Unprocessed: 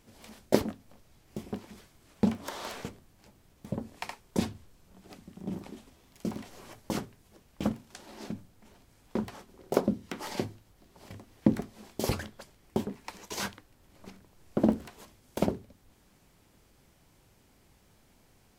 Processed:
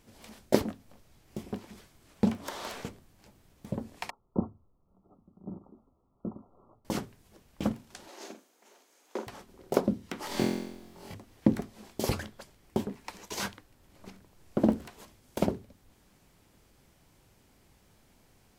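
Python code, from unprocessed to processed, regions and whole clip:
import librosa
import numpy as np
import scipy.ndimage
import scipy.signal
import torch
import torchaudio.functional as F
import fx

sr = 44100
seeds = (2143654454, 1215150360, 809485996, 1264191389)

y = fx.chain(x, sr, fx.brickwall_lowpass(high_hz=1400.0),
    fx.upward_expand(threshold_db=-44.0, expansion=1.5), at=(4.1, 6.85))
y = fx.chain(y, sr, fx.highpass(hz=340.0, slope=24),
    fx.peak_eq(hz=6500.0, db=7.0, octaves=0.27),
    fx.doubler(ms=45.0, db=-8.5), at=(8.08, 9.27))
y = fx.chain(y, sr, fx.room_flutter(wall_m=3.9, rt60_s=0.86),
    fx.mod_noise(seeds[0], snr_db=30), at=(10.27, 11.14))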